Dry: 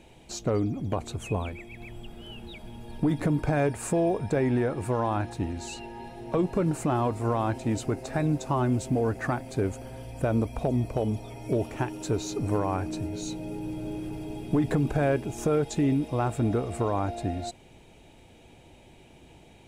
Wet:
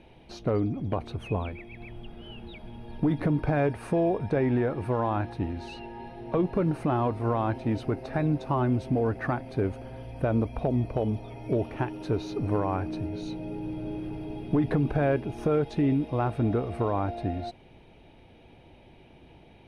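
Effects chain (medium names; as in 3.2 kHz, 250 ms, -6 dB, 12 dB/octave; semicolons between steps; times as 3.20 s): boxcar filter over 6 samples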